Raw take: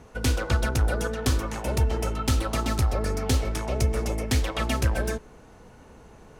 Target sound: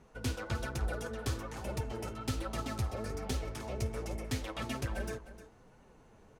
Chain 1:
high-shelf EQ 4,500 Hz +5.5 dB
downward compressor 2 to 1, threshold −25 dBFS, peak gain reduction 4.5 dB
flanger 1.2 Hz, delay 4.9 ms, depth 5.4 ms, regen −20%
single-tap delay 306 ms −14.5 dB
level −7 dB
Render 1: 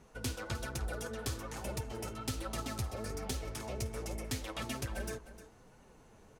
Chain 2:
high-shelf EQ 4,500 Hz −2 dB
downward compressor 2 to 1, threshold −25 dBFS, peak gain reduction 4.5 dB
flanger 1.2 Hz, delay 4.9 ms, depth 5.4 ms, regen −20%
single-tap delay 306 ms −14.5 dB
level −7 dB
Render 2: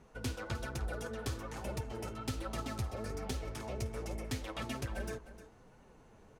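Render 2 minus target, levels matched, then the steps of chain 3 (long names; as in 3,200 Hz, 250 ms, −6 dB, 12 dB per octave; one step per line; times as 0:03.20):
downward compressor: peak gain reduction +4.5 dB
high-shelf EQ 4,500 Hz −2 dB
flanger 1.2 Hz, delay 4.9 ms, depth 5.4 ms, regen −20%
single-tap delay 306 ms −14.5 dB
level −7 dB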